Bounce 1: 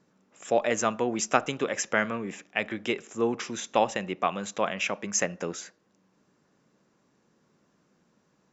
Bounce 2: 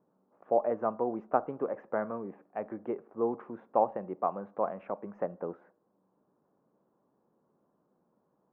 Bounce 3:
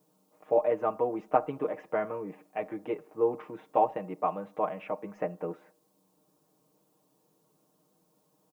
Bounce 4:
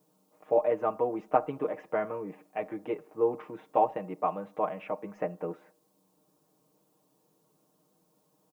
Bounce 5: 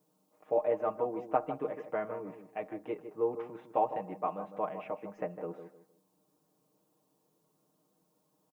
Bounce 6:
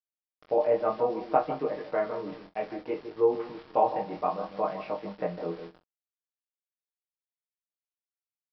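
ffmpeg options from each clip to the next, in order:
ffmpeg -i in.wav -af "lowpass=frequency=1000:width=0.5412,lowpass=frequency=1000:width=1.3066,lowshelf=frequency=270:gain=-11.5" out.wav
ffmpeg -i in.wav -af "aecho=1:1:6.5:0.77,aexciter=amount=3.8:drive=8.2:freq=2200" out.wav
ffmpeg -i in.wav -af anull out.wav
ffmpeg -i in.wav -filter_complex "[0:a]asplit=2[link_01][link_02];[link_02]adelay=155,lowpass=frequency=1300:poles=1,volume=-9dB,asplit=2[link_03][link_04];[link_04]adelay=155,lowpass=frequency=1300:poles=1,volume=0.29,asplit=2[link_05][link_06];[link_06]adelay=155,lowpass=frequency=1300:poles=1,volume=0.29[link_07];[link_01][link_03][link_05][link_07]amix=inputs=4:normalize=0,volume=-4.5dB" out.wav
ffmpeg -i in.wav -filter_complex "[0:a]aresample=11025,aeval=exprs='val(0)*gte(abs(val(0)),0.00282)':channel_layout=same,aresample=44100,flanger=delay=19.5:depth=4.6:speed=0.62,asplit=2[link_01][link_02];[link_02]adelay=45,volume=-14dB[link_03];[link_01][link_03]amix=inputs=2:normalize=0,volume=8dB" out.wav

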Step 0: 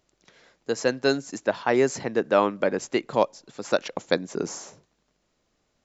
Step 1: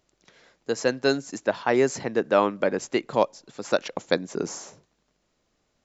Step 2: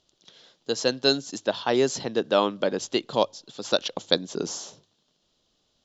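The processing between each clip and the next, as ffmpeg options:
ffmpeg -i in.wav -af anull out.wav
ffmpeg -i in.wav -af "lowpass=5800,highshelf=frequency=2700:width_type=q:width=3:gain=6.5,bandreject=frequency=50:width_type=h:width=6,bandreject=frequency=100:width_type=h:width=6,volume=-1dB" out.wav

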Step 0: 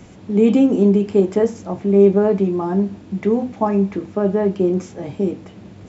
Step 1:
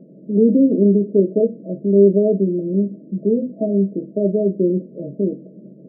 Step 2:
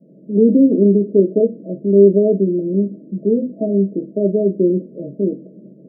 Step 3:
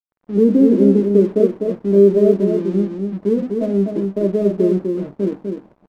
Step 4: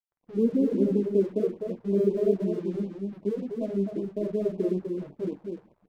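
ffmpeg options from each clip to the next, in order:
ffmpeg -i in.wav -af "afftfilt=real='re*between(b*sr/4096,130,660)':imag='im*between(b*sr/4096,130,660)':win_size=4096:overlap=0.75" out.wav
ffmpeg -i in.wav -af "adynamicequalizer=threshold=0.0562:dfrequency=330:dqfactor=0.82:tfrequency=330:tqfactor=0.82:attack=5:release=100:ratio=0.375:range=2.5:mode=boostabove:tftype=bell,volume=-2dB" out.wav
ffmpeg -i in.wav -af "aeval=exprs='sgn(val(0))*max(abs(val(0))-0.0119,0)':channel_layout=same,aecho=1:1:250:0.562,volume=-1dB" out.wav
ffmpeg -i in.wav -af "flanger=delay=5.3:depth=8.2:regen=-73:speed=0.39:shape=triangular,afftfilt=real='re*(1-between(b*sr/1024,210*pow(1700/210,0.5+0.5*sin(2*PI*5.3*pts/sr))/1.41,210*pow(1700/210,0.5+0.5*sin(2*PI*5.3*pts/sr))*1.41))':imag='im*(1-between(b*sr/1024,210*pow(1700/210,0.5+0.5*sin(2*PI*5.3*pts/sr))/1.41,210*pow(1700/210,0.5+0.5*sin(2*PI*5.3*pts/sr))*1.41))':win_size=1024:overlap=0.75,volume=-5.5dB" out.wav

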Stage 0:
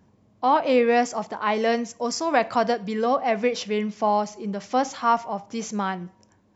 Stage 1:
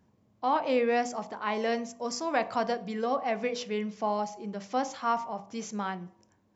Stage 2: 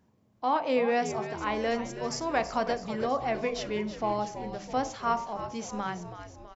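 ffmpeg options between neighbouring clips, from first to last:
ffmpeg -i in.wav -af "bandreject=frequency=48.74:width_type=h:width=4,bandreject=frequency=97.48:width_type=h:width=4,bandreject=frequency=146.22:width_type=h:width=4,bandreject=frequency=194.96:width_type=h:width=4,bandreject=frequency=243.7:width_type=h:width=4,bandreject=frequency=292.44:width_type=h:width=4,bandreject=frequency=341.18:width_type=h:width=4,bandreject=frequency=389.92:width_type=h:width=4,bandreject=frequency=438.66:width_type=h:width=4,bandreject=frequency=487.4:width_type=h:width=4,bandreject=frequency=536.14:width_type=h:width=4,bandreject=frequency=584.88:width_type=h:width=4,bandreject=frequency=633.62:width_type=h:width=4,bandreject=frequency=682.36:width_type=h:width=4,bandreject=frequency=731.1:width_type=h:width=4,bandreject=frequency=779.84:width_type=h:width=4,bandreject=frequency=828.58:width_type=h:width=4,bandreject=frequency=877.32:width_type=h:width=4,bandreject=frequency=926.06:width_type=h:width=4,bandreject=frequency=974.8:width_type=h:width=4,bandreject=frequency=1023.54:width_type=h:width=4,bandreject=frequency=1072.28:width_type=h:width=4,bandreject=frequency=1121.02:width_type=h:width=4,bandreject=frequency=1169.76:width_type=h:width=4,volume=-6.5dB" out.wav
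ffmpeg -i in.wav -filter_complex "[0:a]bandreject=frequency=50:width_type=h:width=6,bandreject=frequency=100:width_type=h:width=6,bandreject=frequency=150:width_type=h:width=6,bandreject=frequency=200:width_type=h:width=6,asplit=7[link_01][link_02][link_03][link_04][link_05][link_06][link_07];[link_02]adelay=326,afreqshift=-87,volume=-11dB[link_08];[link_03]adelay=652,afreqshift=-174,volume=-15.9dB[link_09];[link_04]adelay=978,afreqshift=-261,volume=-20.8dB[link_10];[link_05]adelay=1304,afreqshift=-348,volume=-25.6dB[link_11];[link_06]adelay=1630,afreqshift=-435,volume=-30.5dB[link_12];[link_07]adelay=1956,afreqshift=-522,volume=-35.4dB[link_13];[link_01][link_08][link_09][link_10][link_11][link_12][link_13]amix=inputs=7:normalize=0" out.wav

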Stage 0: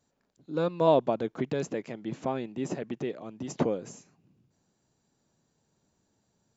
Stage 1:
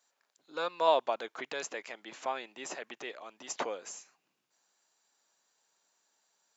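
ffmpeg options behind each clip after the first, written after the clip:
ffmpeg -i in.wav -af "highpass=1000,volume=4.5dB" out.wav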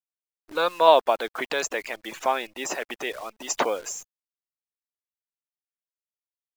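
ffmpeg -i in.wav -af "afftfilt=real='re*gte(hypot(re,im),0.00398)':imag='im*gte(hypot(re,im),0.00398)':win_size=1024:overlap=0.75,dynaudnorm=framelen=120:gausssize=5:maxgain=11dB,acrusher=bits=8:dc=4:mix=0:aa=0.000001" out.wav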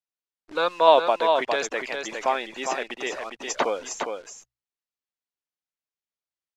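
ffmpeg -i in.wav -af "lowpass=6300,bandreject=frequency=60:width_type=h:width=6,bandreject=frequency=120:width_type=h:width=6,aecho=1:1:408:0.531" out.wav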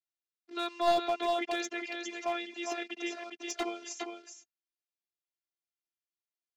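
ffmpeg -i in.wav -af "afftfilt=real='hypot(re,im)*cos(PI*b)':imag='0':win_size=512:overlap=0.75,highpass=frequency=150:width=0.5412,highpass=frequency=150:width=1.3066,equalizer=frequency=150:width_type=q:width=4:gain=-10,equalizer=frequency=590:width_type=q:width=4:gain=-7,equalizer=frequency=1000:width_type=q:width=4:gain=-10,equalizer=frequency=1600:width_type=q:width=4:gain=-5,lowpass=frequency=6700:width=0.5412,lowpass=frequency=6700:width=1.3066,aeval=exprs='clip(val(0),-1,0.0841)':channel_layout=same,volume=-2dB" out.wav

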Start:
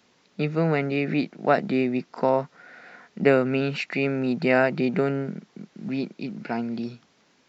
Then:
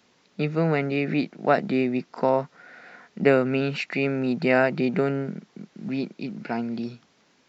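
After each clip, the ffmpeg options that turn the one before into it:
ffmpeg -i in.wav -af anull out.wav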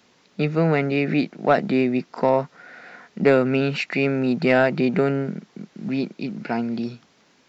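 ffmpeg -i in.wav -af "acontrast=72,volume=-3dB" out.wav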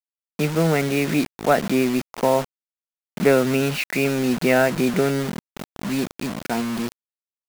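ffmpeg -i in.wav -af "acrusher=bits=4:mix=0:aa=0.000001" out.wav

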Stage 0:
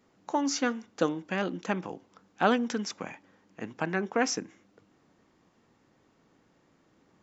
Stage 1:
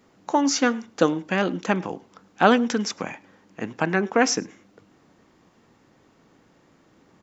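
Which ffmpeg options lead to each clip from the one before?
ffmpeg -i in.wav -filter_complex "[0:a]asplit=2[link_01][link_02];[link_02]adelay=105,volume=-25dB,highshelf=frequency=4000:gain=-2.36[link_03];[link_01][link_03]amix=inputs=2:normalize=0,volume=7.5dB" out.wav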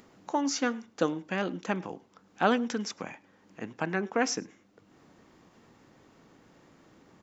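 ffmpeg -i in.wav -af "acompressor=mode=upward:threshold=-41dB:ratio=2.5,volume=-8dB" out.wav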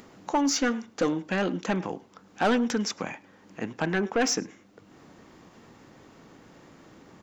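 ffmpeg -i in.wav -af "asoftclip=type=tanh:threshold=-23.5dB,volume=6.5dB" out.wav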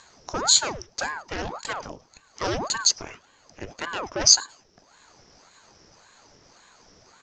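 ffmpeg -i in.wav -af "lowpass=frequency=5500:width_type=q:width=14,aeval=exprs='val(0)*sin(2*PI*740*n/s+740*0.85/1.8*sin(2*PI*1.8*n/s))':channel_layout=same,volume=-2dB" out.wav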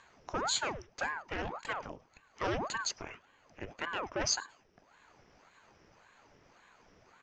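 ffmpeg -i in.wav -af "highshelf=frequency=3500:width_type=q:width=1.5:gain=-8.5,volume=-6.5dB" out.wav

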